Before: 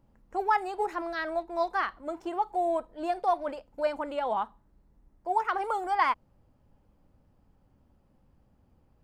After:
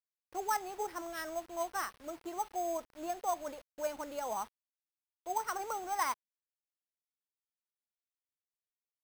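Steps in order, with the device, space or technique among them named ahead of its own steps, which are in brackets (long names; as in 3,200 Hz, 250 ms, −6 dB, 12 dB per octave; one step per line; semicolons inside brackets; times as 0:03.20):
early 8-bit sampler (sample-rate reduction 7,100 Hz, jitter 0%; bit reduction 8 bits)
level −8 dB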